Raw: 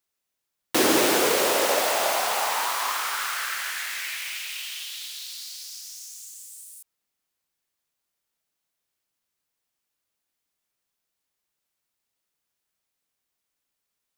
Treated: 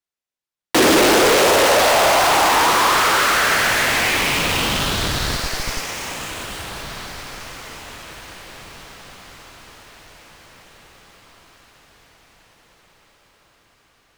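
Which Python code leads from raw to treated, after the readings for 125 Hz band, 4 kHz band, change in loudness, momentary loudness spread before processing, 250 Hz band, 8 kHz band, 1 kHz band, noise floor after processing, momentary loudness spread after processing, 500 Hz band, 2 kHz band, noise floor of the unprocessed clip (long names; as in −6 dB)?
can't be measured, +9.5 dB, +8.5 dB, 19 LU, +9.0 dB, +6.5 dB, +11.0 dB, below −85 dBFS, 20 LU, +9.5 dB, +11.5 dB, −82 dBFS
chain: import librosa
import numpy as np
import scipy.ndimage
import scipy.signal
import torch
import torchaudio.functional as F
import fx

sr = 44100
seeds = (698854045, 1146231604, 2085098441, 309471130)

p1 = fx.high_shelf(x, sr, hz=9600.0, db=-10.5)
p2 = fx.schmitt(p1, sr, flips_db=-32.0)
p3 = p1 + (p2 * 10.0 ** (-4.0 / 20.0))
p4 = fx.leveller(p3, sr, passes=3)
y = fx.echo_diffused(p4, sr, ms=1701, feedback_pct=44, wet_db=-12.0)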